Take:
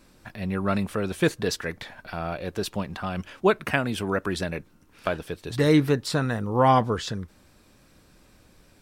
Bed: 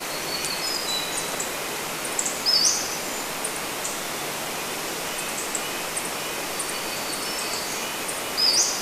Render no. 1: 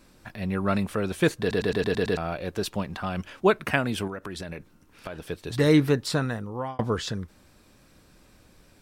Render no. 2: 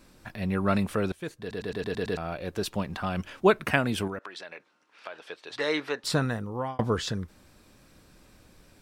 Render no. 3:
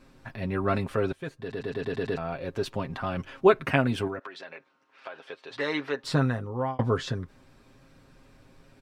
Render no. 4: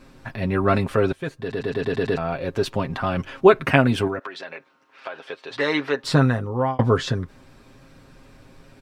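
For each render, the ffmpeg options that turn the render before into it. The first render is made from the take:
ffmpeg -i in.wav -filter_complex "[0:a]asettb=1/sr,asplit=3[link_01][link_02][link_03];[link_01]atrim=end=4.074[link_04];[link_02]atrim=start=4.07:end=5.28,asetpts=PTS-STARTPTS,afade=type=in:duration=0.004:curve=qsin,afade=type=out:start_time=1.206:duration=0.004:curve=qsin,acompressor=threshold=-32dB:ratio=6:attack=3.2:release=140:knee=1:detection=peak[link_05];[link_03]atrim=start=5.276[link_06];[link_04][link_05]acrossfade=duration=0.004:curve1=hsin:curve2=qsin[link_07];[link_07][link_06]acrossfade=duration=0.004:curve1=qsin:curve2=hsin,asplit=9[link_08][link_09][link_10][link_11][link_12][link_13][link_14][link_15][link_16];[link_08]atrim=end=1.512[link_17];[link_09]atrim=start=1.398:end=1.512[link_18];[link_10]atrim=start=1.398:end=1.512[link_19];[link_11]atrim=start=1.398:end=1.512[link_20];[link_12]atrim=start=1.398:end=1.512[link_21];[link_13]atrim=start=1.398:end=1.512[link_22];[link_14]atrim=start=1.398:end=1.512[link_23];[link_15]atrim=start=2.168:end=6.79,asetpts=PTS-STARTPTS,afade=type=out:start_time=3.952:duration=0.67[link_24];[link_16]atrim=start=6.79,asetpts=PTS-STARTPTS,afade=type=in:duration=0.004:curve=hsin[link_25];[link_17][link_18]acrossfade=duration=0.004:curve1=hsin:curve2=hsin[link_26];[link_26][link_19]acrossfade=duration=0.004:curve1=hsin:curve2=hsin[link_27];[link_27][link_20]acrossfade=duration=0.004:curve1=hsin:curve2=hsin[link_28];[link_28][link_21]acrossfade=duration=0.004:curve1=hsin:curve2=hsin[link_29];[link_29][link_22]acrossfade=duration=0.004:curve1=hsin:curve2=hsin[link_30];[link_30][link_23]acrossfade=duration=0.004:curve1=hsin:curve2=hsin[link_31];[link_24][link_25]concat=n=2:v=0:a=1[link_32];[link_31][link_32]acrossfade=duration=0.004:curve1=hsin:curve2=hsin" out.wav
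ffmpeg -i in.wav -filter_complex "[0:a]asettb=1/sr,asplit=3[link_01][link_02][link_03];[link_01]atrim=end=4.194[link_04];[link_02]atrim=start=4.19:end=6.04,asetpts=PTS-STARTPTS,afade=type=in:duration=0.004:curve=qsin,afade=type=out:start_time=1.846:duration=0.004:curve=qsin,highpass=660,lowpass=4800[link_05];[link_03]atrim=start=6.036[link_06];[link_04][link_05]acrossfade=duration=0.004:curve1=hsin:curve2=qsin[link_07];[link_07][link_06]acrossfade=duration=0.004:curve1=qsin:curve2=hsin,asplit=2[link_08][link_09];[link_08]atrim=end=1.12,asetpts=PTS-STARTPTS,afade=type=out:start_time=1.116:duration=0.004:curve=hsin:silence=0.125893[link_10];[link_09]atrim=start=1.12,asetpts=PTS-STARTPTS,afade=type=in:duration=1.85:silence=0.125893[link_11];[link_10][link_11]concat=n=2:v=0:a=1" out.wav
ffmpeg -i in.wav -af "lowpass=frequency=2700:poles=1,aecho=1:1:7.5:0.58" out.wav
ffmpeg -i in.wav -af "volume=7dB,alimiter=limit=-2dB:level=0:latency=1" out.wav

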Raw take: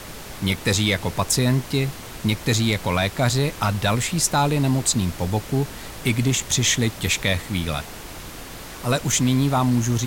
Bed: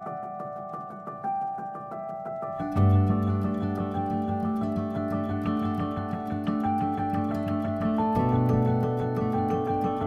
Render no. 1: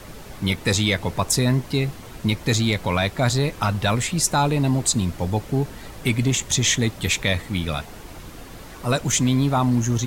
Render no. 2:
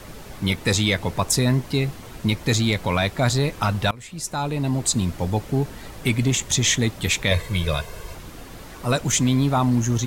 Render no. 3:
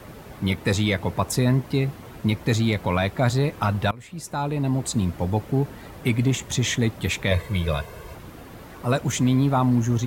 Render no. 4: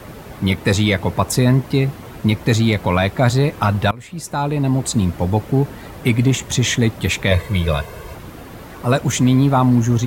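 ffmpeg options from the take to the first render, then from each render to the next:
ffmpeg -i in.wav -af "afftdn=noise_reduction=7:noise_floor=-37" out.wav
ffmpeg -i in.wav -filter_complex "[0:a]asettb=1/sr,asplit=3[link_01][link_02][link_03];[link_01]atrim=end=7.314[link_04];[link_02]atrim=start=7.31:end=8.15,asetpts=PTS-STARTPTS,afade=type=in:duration=0.004:curve=qsin,afade=type=out:start_time=0.836:duration=0.004:curve=qsin,aecho=1:1:1.9:0.93,atrim=end_sample=37044[link_05];[link_03]atrim=start=8.146[link_06];[link_04][link_05]acrossfade=duration=0.004:curve1=hsin:curve2=qsin[link_07];[link_07][link_06]acrossfade=duration=0.004:curve1=qsin:curve2=hsin,asplit=2[link_08][link_09];[link_08]atrim=end=3.91,asetpts=PTS-STARTPTS,afade=type=out:start_time=3.906:duration=0.004:curve=hsin:silence=0.0707946[link_10];[link_09]atrim=start=3.91,asetpts=PTS-STARTPTS,afade=type=in:duration=1.12:silence=0.0707946[link_11];[link_10][link_11]concat=n=2:v=0:a=1" out.wav
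ffmpeg -i in.wav -af "highpass=57,equalizer=frequency=6500:width_type=o:width=2.4:gain=-8.5" out.wav
ffmpeg -i in.wav -af "volume=6dB" out.wav

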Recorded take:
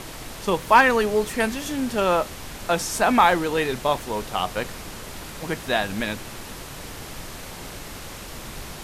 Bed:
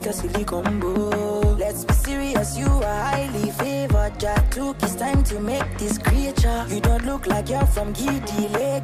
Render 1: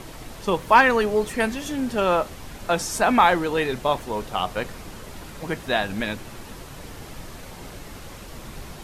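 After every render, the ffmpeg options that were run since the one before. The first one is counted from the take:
ffmpeg -i in.wav -af "afftdn=noise_reduction=6:noise_floor=-38" out.wav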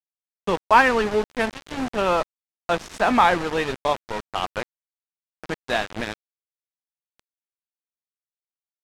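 ffmpeg -i in.wav -af "aeval=exprs='val(0)*gte(abs(val(0)),0.0631)':channel_layout=same,adynamicsmooth=sensitivity=1:basefreq=5000" out.wav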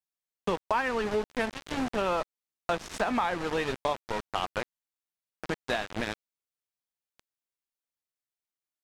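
ffmpeg -i in.wav -af "alimiter=limit=-9dB:level=0:latency=1:release=384,acompressor=threshold=-27dB:ratio=3" out.wav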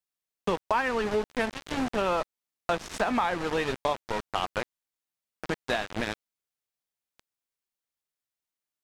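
ffmpeg -i in.wav -af "volume=1.5dB" out.wav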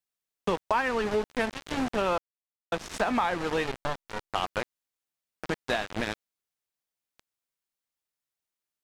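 ffmpeg -i in.wav -filter_complex "[0:a]asettb=1/sr,asplit=3[link_01][link_02][link_03];[link_01]atrim=end=3.664[link_04];[link_02]atrim=start=3.66:end=4.3,asetpts=PTS-STARTPTS,afade=type=in:duration=0.004:curve=qsin,afade=type=out:start_time=0.636:duration=0.004:curve=qsin,aeval=exprs='max(val(0),0)':channel_layout=same[link_05];[link_03]atrim=start=4.296[link_06];[link_04][link_05]acrossfade=duration=0.004:curve1=hsin:curve2=qsin[link_07];[link_07][link_06]acrossfade=duration=0.004:curve1=qsin:curve2=hsin,asplit=3[link_08][link_09][link_10];[link_08]atrim=end=2.18,asetpts=PTS-STARTPTS,afade=type=out:start_time=2.176:duration=0.004:curve=hsin[link_11];[link_09]atrim=start=2.18:end=2.72,asetpts=PTS-STARTPTS,volume=0[link_12];[link_10]atrim=start=2.72,asetpts=PTS-STARTPTS,afade=type=in:duration=0.004:curve=hsin[link_13];[link_11][link_12][link_13]concat=n=3:v=0:a=1" out.wav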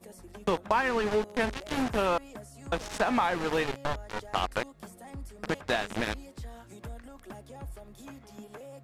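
ffmpeg -i in.wav -i bed.wav -filter_complex "[1:a]volume=-23.5dB[link_01];[0:a][link_01]amix=inputs=2:normalize=0" out.wav

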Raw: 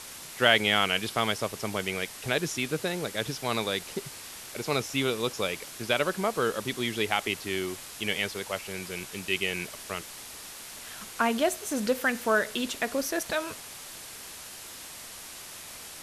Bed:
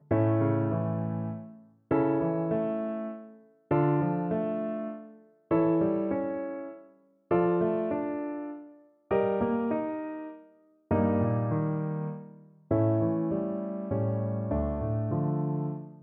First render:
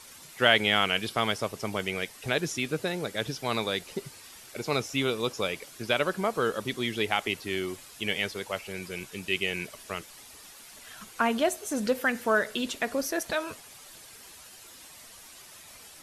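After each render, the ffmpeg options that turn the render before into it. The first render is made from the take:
ffmpeg -i in.wav -af "afftdn=noise_reduction=9:noise_floor=-44" out.wav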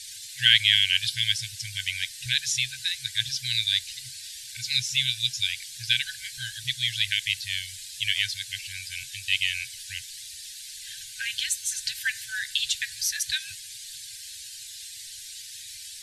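ffmpeg -i in.wav -af "afftfilt=real='re*(1-between(b*sr/4096,130,1500))':imag='im*(1-between(b*sr/4096,130,1500))':win_size=4096:overlap=0.75,equalizer=frequency=250:width_type=o:width=1:gain=5,equalizer=frequency=1000:width_type=o:width=1:gain=-7,equalizer=frequency=4000:width_type=o:width=1:gain=11,equalizer=frequency=8000:width_type=o:width=1:gain=8" out.wav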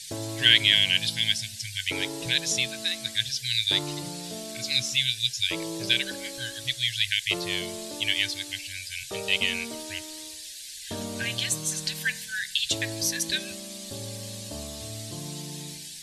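ffmpeg -i in.wav -i bed.wav -filter_complex "[1:a]volume=-10dB[link_01];[0:a][link_01]amix=inputs=2:normalize=0" out.wav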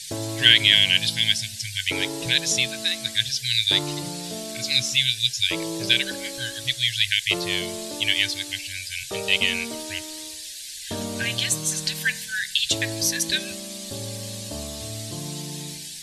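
ffmpeg -i in.wav -af "volume=4dB,alimiter=limit=-1dB:level=0:latency=1" out.wav

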